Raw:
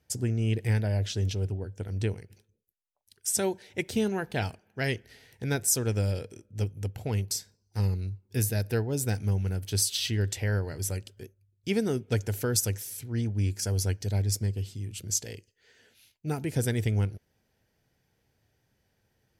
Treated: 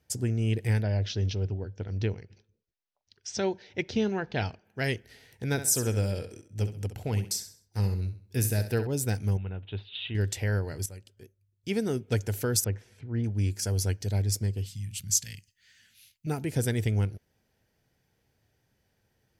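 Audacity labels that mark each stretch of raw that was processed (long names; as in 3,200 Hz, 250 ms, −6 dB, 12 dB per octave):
0.820000	4.650000	Butterworth low-pass 6,000 Hz 48 dB per octave
5.510000	8.870000	repeating echo 66 ms, feedback 36%, level −11 dB
9.370000	10.150000	Chebyshev low-pass with heavy ripple 3,800 Hz, ripple 6 dB
10.860000	12.060000	fade in, from −13.5 dB
12.640000	13.240000	low-pass filter 1,900 Hz
14.660000	16.270000	drawn EQ curve 190 Hz 0 dB, 410 Hz −24 dB, 1,900 Hz +1 dB, 14,000 Hz +5 dB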